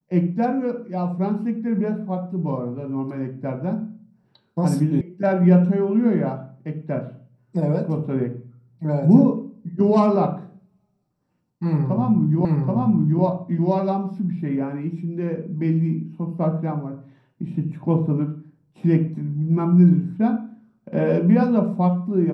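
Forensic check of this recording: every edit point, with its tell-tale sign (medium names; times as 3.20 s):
5.01 s: sound stops dead
12.45 s: repeat of the last 0.78 s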